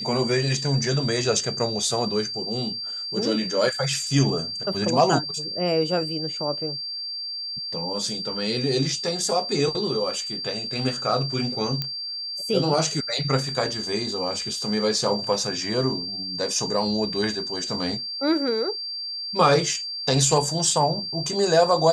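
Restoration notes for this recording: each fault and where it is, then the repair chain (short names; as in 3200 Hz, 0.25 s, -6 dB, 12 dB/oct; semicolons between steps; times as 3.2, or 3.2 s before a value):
tone 4700 Hz -29 dBFS
11.82 pop -12 dBFS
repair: de-click; notch 4700 Hz, Q 30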